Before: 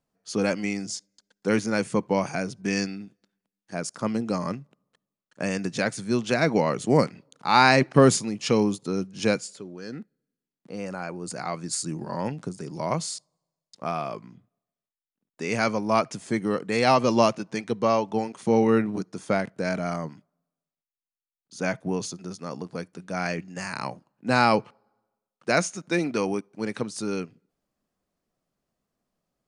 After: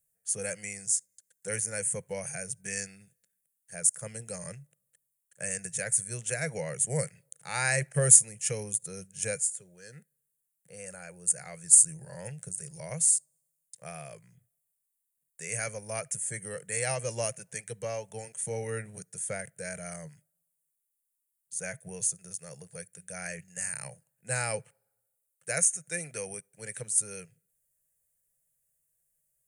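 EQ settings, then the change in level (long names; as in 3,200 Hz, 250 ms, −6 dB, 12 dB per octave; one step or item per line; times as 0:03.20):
high shelf with overshoot 6,200 Hz +12.5 dB, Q 1.5
dynamic equaliser 3,700 Hz, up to −5 dB, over −42 dBFS, Q 1.4
drawn EQ curve 150 Hz 0 dB, 270 Hz −28 dB, 510 Hz −3 dB, 1,100 Hz −18 dB, 1,700 Hz +2 dB, 4,900 Hz −4 dB, 9,200 Hz +8 dB
−5.5 dB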